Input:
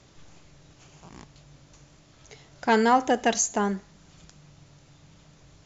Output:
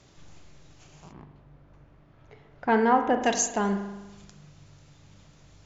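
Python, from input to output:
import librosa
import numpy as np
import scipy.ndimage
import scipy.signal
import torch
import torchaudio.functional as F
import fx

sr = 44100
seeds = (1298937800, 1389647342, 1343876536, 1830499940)

y = fx.lowpass(x, sr, hz=fx.line((1.11, 1300.0), (3.21, 2200.0)), slope=12, at=(1.11, 3.21), fade=0.02)
y = fx.rev_spring(y, sr, rt60_s=1.1, pass_ms=(40,), chirp_ms=40, drr_db=7.0)
y = F.gain(torch.from_numpy(y), -1.5).numpy()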